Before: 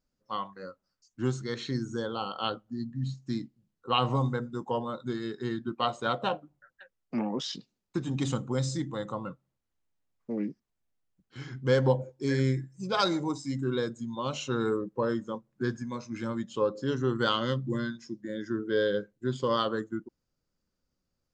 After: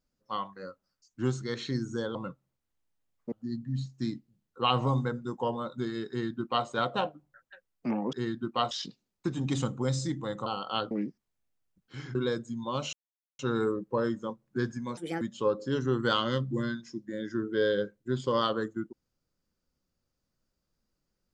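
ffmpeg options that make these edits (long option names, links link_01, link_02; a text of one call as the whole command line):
ffmpeg -i in.wav -filter_complex "[0:a]asplit=11[link_01][link_02][link_03][link_04][link_05][link_06][link_07][link_08][link_09][link_10][link_11];[link_01]atrim=end=2.152[link_12];[link_02]atrim=start=9.158:end=10.332[link_13];[link_03]atrim=start=2.598:end=7.412[link_14];[link_04]atrim=start=5.368:end=5.952[link_15];[link_05]atrim=start=7.408:end=9.162[link_16];[link_06]atrim=start=2.148:end=2.602[link_17];[link_07]atrim=start=10.328:end=11.572[link_18];[link_08]atrim=start=13.658:end=14.44,asetpts=PTS-STARTPTS,afade=type=out:start_time=0.778:duration=0.004:curve=hsin,apad=pad_dur=0.46[link_19];[link_09]atrim=start=14.44:end=16.024,asetpts=PTS-STARTPTS,afade=type=in:duration=0.004:curve=hsin[link_20];[link_10]atrim=start=16.02:end=16.37,asetpts=PTS-STARTPTS,asetrate=63945,aresample=44100[link_21];[link_11]atrim=start=16.366[link_22];[link_12][link_13]acrossfade=duration=0.004:curve1=hsin:curve2=hsin[link_23];[link_23][link_14]acrossfade=duration=0.004:curve1=hsin:curve2=hsin[link_24];[link_24][link_15]acrossfade=duration=0.004:curve1=hsin:curve2=hsin[link_25];[link_25][link_16]acrossfade=duration=0.004:curve1=hsin:curve2=hsin[link_26];[link_26][link_17]acrossfade=duration=0.004:curve1=hsin:curve2=hsin[link_27];[link_27][link_18]acrossfade=duration=0.004:curve1=hsin:curve2=hsin[link_28];[link_19][link_20]concat=n=2:v=0:a=1[link_29];[link_28][link_29]acrossfade=duration=0.004:curve1=hsin:curve2=hsin[link_30];[link_30][link_21]acrossfade=duration=0.004:curve1=hsin:curve2=hsin[link_31];[link_31][link_22]acrossfade=duration=0.004:curve1=hsin:curve2=hsin" out.wav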